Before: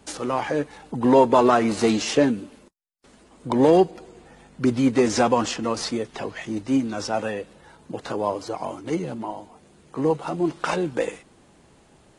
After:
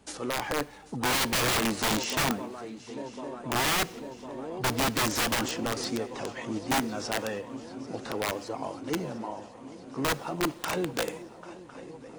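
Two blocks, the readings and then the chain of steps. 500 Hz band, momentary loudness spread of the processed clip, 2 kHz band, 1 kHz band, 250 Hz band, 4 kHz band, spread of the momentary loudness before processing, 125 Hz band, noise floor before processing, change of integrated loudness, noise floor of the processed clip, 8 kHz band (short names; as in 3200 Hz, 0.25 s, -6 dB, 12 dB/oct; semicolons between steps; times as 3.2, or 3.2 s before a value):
-11.5 dB, 15 LU, +2.0 dB, -6.5 dB, -10.0 dB, +2.5 dB, 15 LU, -5.0 dB, -56 dBFS, -7.0 dB, -48 dBFS, +2.5 dB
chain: swung echo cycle 1.054 s, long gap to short 3:1, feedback 70%, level -18 dB; wrapped overs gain 15.5 dB; two-slope reverb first 0.7 s, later 2.3 s, from -18 dB, DRR 19.5 dB; gain -5.5 dB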